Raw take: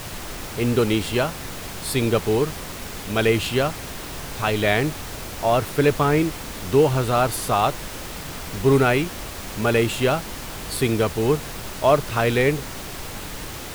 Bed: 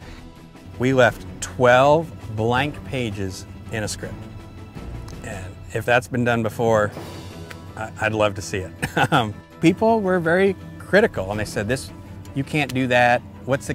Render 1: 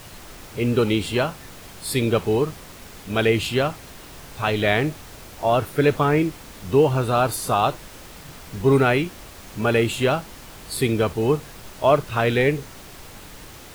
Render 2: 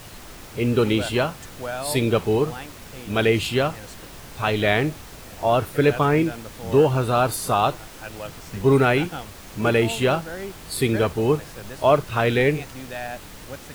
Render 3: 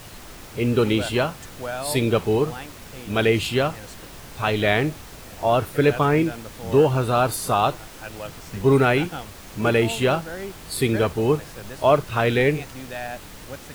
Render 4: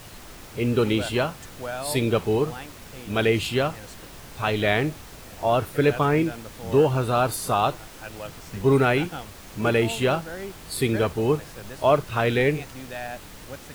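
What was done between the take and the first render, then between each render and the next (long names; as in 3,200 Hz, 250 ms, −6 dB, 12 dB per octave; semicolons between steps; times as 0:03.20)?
noise reduction from a noise print 8 dB
mix in bed −16.5 dB
no processing that can be heard
level −2 dB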